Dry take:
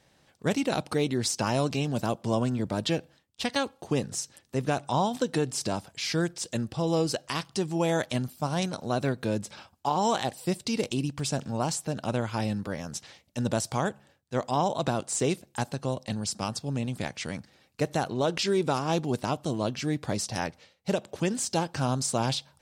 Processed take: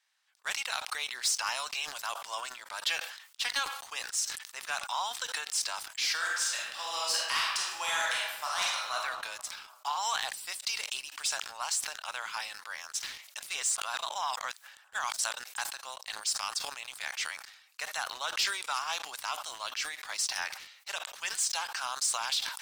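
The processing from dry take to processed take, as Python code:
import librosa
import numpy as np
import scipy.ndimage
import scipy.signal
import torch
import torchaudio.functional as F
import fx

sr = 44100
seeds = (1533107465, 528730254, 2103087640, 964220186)

y = fx.reverb_throw(x, sr, start_s=6.12, length_s=2.81, rt60_s=1.2, drr_db=-4.0)
y = fx.edit(y, sr, fx.reverse_span(start_s=13.4, length_s=2.04), tone=tone)
y = scipy.signal.sosfilt(scipy.signal.butter(4, 1100.0, 'highpass', fs=sr, output='sos'), y)
y = fx.leveller(y, sr, passes=2)
y = fx.sustainer(y, sr, db_per_s=71.0)
y = y * librosa.db_to_amplitude(-5.0)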